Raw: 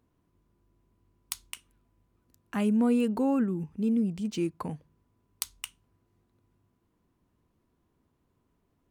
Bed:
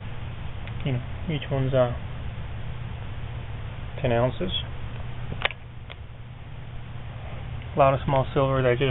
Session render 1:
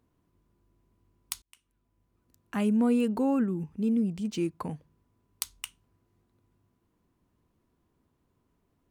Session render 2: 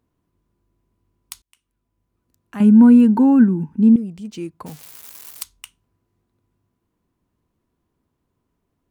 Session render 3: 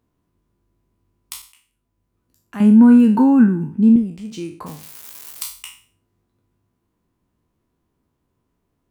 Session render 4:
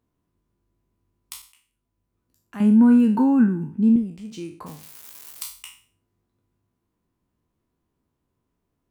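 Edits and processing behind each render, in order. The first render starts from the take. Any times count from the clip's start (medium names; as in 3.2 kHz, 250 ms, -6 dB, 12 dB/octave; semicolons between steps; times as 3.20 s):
1.42–2.68 s: fade in equal-power
2.60–3.96 s: small resonant body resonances 230/910/1500 Hz, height 16 dB, ringing for 25 ms; 4.66–5.43 s: zero-crossing glitches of -25.5 dBFS
spectral sustain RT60 0.42 s
trim -5 dB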